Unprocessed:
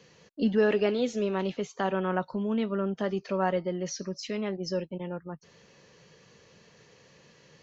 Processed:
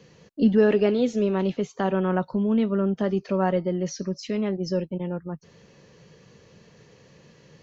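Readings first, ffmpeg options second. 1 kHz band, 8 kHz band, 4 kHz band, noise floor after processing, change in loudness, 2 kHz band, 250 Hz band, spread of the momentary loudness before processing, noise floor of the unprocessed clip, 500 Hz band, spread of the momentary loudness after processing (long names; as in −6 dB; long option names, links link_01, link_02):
+2.0 dB, can't be measured, 0.0 dB, −55 dBFS, +5.5 dB, +0.5 dB, +7.0 dB, 12 LU, −59 dBFS, +4.5 dB, 12 LU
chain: -af "lowshelf=frequency=480:gain=8.5"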